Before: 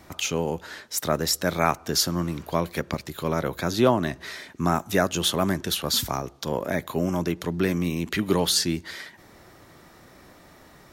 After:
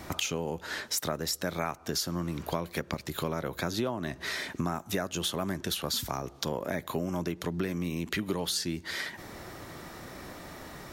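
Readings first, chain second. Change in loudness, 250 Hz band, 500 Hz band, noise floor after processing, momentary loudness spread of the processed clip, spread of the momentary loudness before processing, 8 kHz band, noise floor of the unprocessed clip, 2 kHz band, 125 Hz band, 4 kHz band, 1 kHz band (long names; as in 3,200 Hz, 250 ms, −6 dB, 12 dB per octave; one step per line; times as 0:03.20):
−7.5 dB, −7.5 dB, −8.0 dB, −52 dBFS, 13 LU, 9 LU, −6.5 dB, −52 dBFS, −4.5 dB, −7.0 dB, −6.5 dB, −8.5 dB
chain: downward compressor 6 to 1, threshold −36 dBFS, peak gain reduction 20.5 dB
level +6.5 dB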